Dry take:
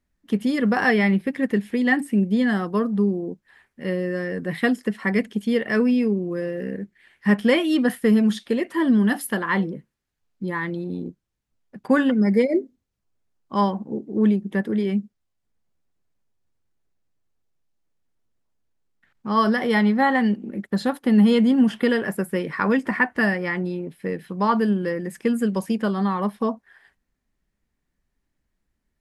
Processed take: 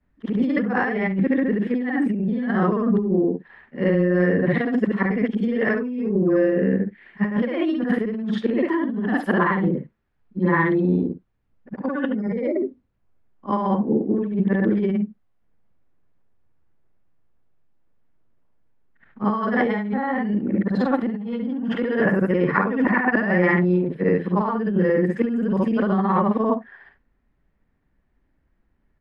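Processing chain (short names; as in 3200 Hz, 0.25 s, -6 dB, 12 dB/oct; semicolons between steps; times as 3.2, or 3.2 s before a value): short-time reversal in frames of 0.145 s; LPF 1900 Hz 12 dB/oct; negative-ratio compressor -29 dBFS, ratio -1; gain +8 dB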